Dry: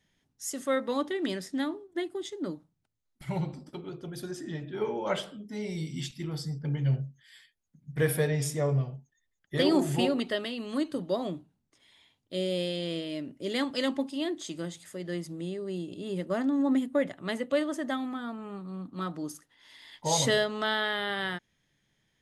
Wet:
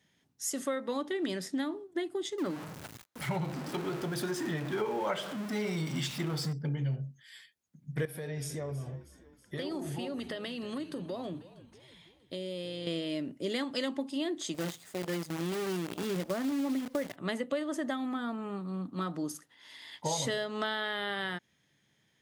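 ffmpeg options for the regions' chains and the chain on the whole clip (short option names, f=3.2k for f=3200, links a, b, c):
-filter_complex "[0:a]asettb=1/sr,asplit=3[a][b][c];[a]atrim=end=2.384[d];[b]atrim=start=2.38:end=6.53,asetpts=PTS-STARTPTS,afade=t=in:d=0.004:c=qsin,afade=t=out:st=4.146:d=0.004:c=qsin,aeval=exprs='val(0)+0.5*0.00944*sgn(val(0))':c=same,equalizer=f=1.3k:w=0.57:g=6[e];[c]atrim=start=6.526[f];[d][e]acrossfade=d=0.004:c1=hsin:c2=qsin[g];[g][f]acrossfade=d=0.004:c1=qsin:c2=hsin,asettb=1/sr,asplit=3[h][i][j];[h]atrim=end=8.054[k];[i]atrim=start=8.05:end=12.87,asetpts=PTS-STARTPTS,afade=t=in:d=0.004:c=qsin,afade=t=out:st=4.816:d=0.004:c=qsin,bandreject=f=7.4k:w=9.1,acompressor=threshold=-37dB:ratio=5:attack=3.2:release=140:knee=1:detection=peak,asplit=6[l][m][n][o][p][q];[m]adelay=320,afreqshift=-65,volume=-16.5dB[r];[n]adelay=640,afreqshift=-130,volume=-21.2dB[s];[o]adelay=960,afreqshift=-195,volume=-26dB[t];[p]adelay=1280,afreqshift=-260,volume=-30.7dB[u];[q]adelay=1600,afreqshift=-325,volume=-35.4dB[v];[l][r][s][t][u][v]amix=inputs=6:normalize=0,atrim=end_sample=212562[w];[j]atrim=start=12.866[x];[k][w]acrossfade=d=0.004:c1=hsin:c2=qsin[y];[y][x]acrossfade=d=0.004:c1=qsin:c2=hsin,asettb=1/sr,asplit=3[z][aa][ab];[z]atrim=end=14.544[ac];[aa]atrim=start=14.54:end=17.16,asetpts=PTS-STARTPTS,afade=t=in:d=0.004:c=qsin,afade=t=out:st=2.616:d=0.004:c=qsin,lowpass=9.9k,acrusher=bits=7:dc=4:mix=0:aa=0.000001[ad];[ab]atrim=start=17.156[ae];[ac][ad]acrossfade=d=0.004:c1=hsin:c2=qsin[af];[af][ae]acrossfade=d=0.004:c1=qsin:c2=hsin,highpass=100,acompressor=threshold=-32dB:ratio=6,volume=2.5dB"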